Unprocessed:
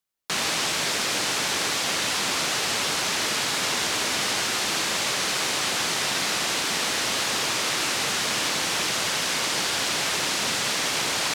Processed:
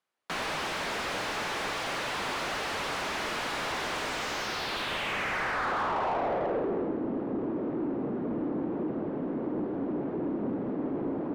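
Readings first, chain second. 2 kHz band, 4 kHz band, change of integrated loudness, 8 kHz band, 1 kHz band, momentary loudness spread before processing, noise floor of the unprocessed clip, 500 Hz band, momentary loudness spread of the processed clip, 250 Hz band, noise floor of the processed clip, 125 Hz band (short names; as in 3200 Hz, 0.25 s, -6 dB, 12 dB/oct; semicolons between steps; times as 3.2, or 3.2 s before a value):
-8.0 dB, -14.5 dB, -8.5 dB, -20.5 dB, -3.5 dB, 0 LU, -26 dBFS, 0.0 dB, 4 LU, +4.5 dB, -34 dBFS, -2.0 dB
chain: high shelf 6300 Hz -11.5 dB; low-pass sweep 11000 Hz -> 290 Hz, 3.93–6.99; overdrive pedal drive 27 dB, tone 1000 Hz, clips at -11.5 dBFS; gain -8 dB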